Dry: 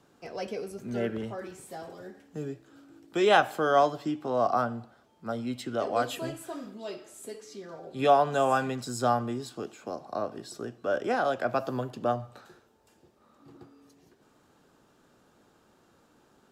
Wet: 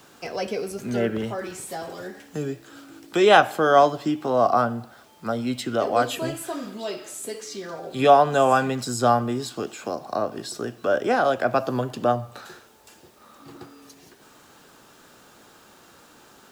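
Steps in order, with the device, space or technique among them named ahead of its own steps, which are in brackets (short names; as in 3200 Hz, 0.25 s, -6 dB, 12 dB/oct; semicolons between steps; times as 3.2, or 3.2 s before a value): noise-reduction cassette on a plain deck (mismatched tape noise reduction encoder only; wow and flutter 20 cents; white noise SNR 39 dB); gain +6.5 dB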